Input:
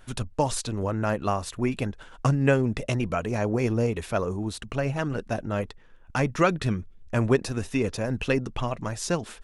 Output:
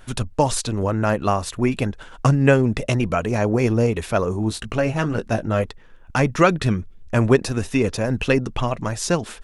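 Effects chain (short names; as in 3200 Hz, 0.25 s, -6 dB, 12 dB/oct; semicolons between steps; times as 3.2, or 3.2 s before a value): 4.31–5.64 doubler 18 ms -8 dB; gain +6 dB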